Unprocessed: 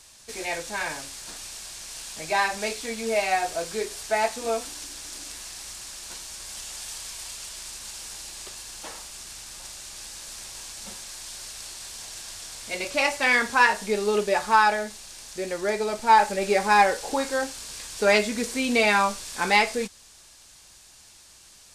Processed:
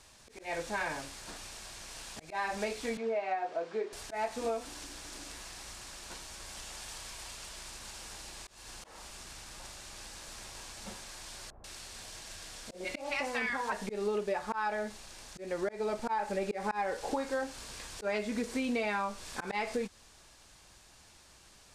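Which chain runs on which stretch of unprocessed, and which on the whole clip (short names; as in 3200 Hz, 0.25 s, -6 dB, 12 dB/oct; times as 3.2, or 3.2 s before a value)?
2.97–3.93 HPF 300 Hz + tape spacing loss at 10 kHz 26 dB
11.5–13.72 compressor 2:1, threshold -23 dBFS + notches 50/100/150/200/250/300/350/400/450 Hz + bands offset in time lows, highs 0.14 s, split 920 Hz
whole clip: high shelf 3100 Hz -11.5 dB; auto swell 0.219 s; compressor, threshold -30 dBFS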